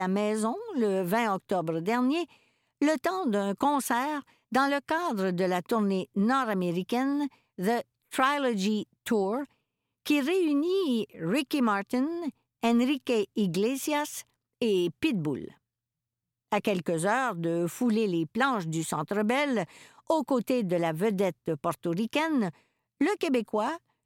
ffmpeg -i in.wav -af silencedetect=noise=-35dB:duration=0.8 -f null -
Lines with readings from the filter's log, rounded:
silence_start: 15.48
silence_end: 16.52 | silence_duration: 1.05